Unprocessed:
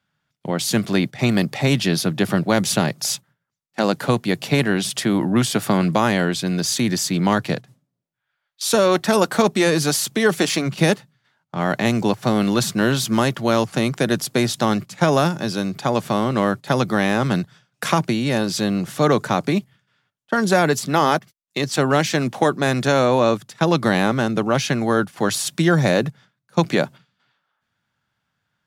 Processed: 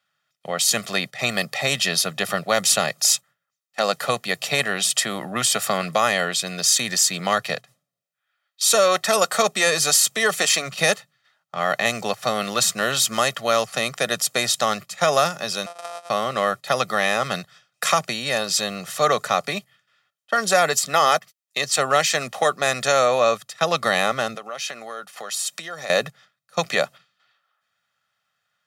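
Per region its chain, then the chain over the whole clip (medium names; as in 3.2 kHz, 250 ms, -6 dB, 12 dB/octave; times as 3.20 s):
15.66–16.10 s: sorted samples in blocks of 256 samples + compression 20:1, threshold -28 dBFS + cabinet simulation 480–9900 Hz, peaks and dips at 700 Hz +9 dB, 1.3 kHz +3 dB, 1.9 kHz -9 dB, 2.9 kHz -6 dB, 4.3 kHz -5 dB, 6.8 kHz -6 dB
24.35–25.90 s: high-pass 240 Hz + compression 4:1, threshold -29 dBFS
whole clip: high-pass 1 kHz 6 dB/octave; dynamic bell 7.5 kHz, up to +5 dB, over -42 dBFS, Q 2.6; comb 1.6 ms, depth 64%; trim +2 dB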